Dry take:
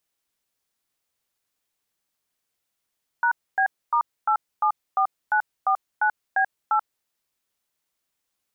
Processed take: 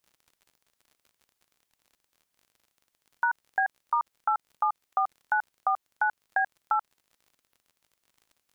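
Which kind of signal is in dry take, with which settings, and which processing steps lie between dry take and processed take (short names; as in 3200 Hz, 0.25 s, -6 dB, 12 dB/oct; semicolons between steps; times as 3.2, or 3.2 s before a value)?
DTMF "#B*874949B8", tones 85 ms, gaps 0.263 s, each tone -20 dBFS
crackle 45/s -47 dBFS; compressor, threshold -22 dBFS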